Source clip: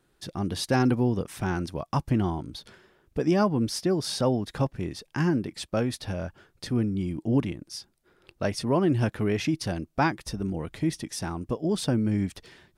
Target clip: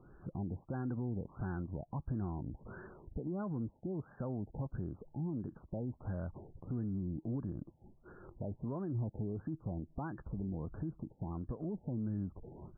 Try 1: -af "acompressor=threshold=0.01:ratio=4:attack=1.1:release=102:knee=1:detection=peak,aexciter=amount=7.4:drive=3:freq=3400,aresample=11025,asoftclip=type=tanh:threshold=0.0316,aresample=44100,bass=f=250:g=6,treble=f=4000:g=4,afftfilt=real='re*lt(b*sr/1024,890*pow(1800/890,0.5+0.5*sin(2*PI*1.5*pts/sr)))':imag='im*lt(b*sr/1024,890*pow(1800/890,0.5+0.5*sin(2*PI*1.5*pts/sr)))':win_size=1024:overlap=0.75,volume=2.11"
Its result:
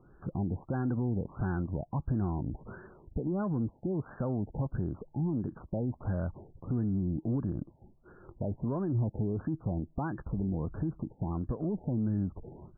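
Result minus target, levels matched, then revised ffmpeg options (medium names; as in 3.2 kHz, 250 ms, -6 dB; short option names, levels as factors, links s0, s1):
compression: peak gain reduction -7.5 dB
-af "acompressor=threshold=0.00316:ratio=4:attack=1.1:release=102:knee=1:detection=peak,aexciter=amount=7.4:drive=3:freq=3400,aresample=11025,asoftclip=type=tanh:threshold=0.0316,aresample=44100,bass=f=250:g=6,treble=f=4000:g=4,afftfilt=real='re*lt(b*sr/1024,890*pow(1800/890,0.5+0.5*sin(2*PI*1.5*pts/sr)))':imag='im*lt(b*sr/1024,890*pow(1800/890,0.5+0.5*sin(2*PI*1.5*pts/sr)))':win_size=1024:overlap=0.75,volume=2.11"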